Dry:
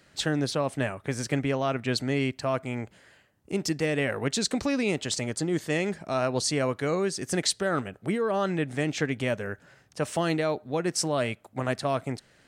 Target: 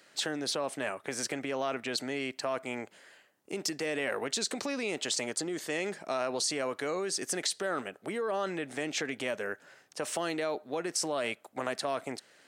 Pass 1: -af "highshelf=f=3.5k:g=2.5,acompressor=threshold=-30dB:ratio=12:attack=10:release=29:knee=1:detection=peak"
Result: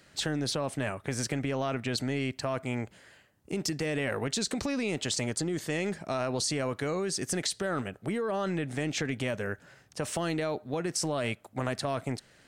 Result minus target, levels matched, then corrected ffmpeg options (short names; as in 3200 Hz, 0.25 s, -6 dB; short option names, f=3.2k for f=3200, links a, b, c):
250 Hz band +3.5 dB
-af "highshelf=f=3.5k:g=2.5,acompressor=threshold=-30dB:ratio=12:attack=10:release=29:knee=1:detection=peak,highpass=330"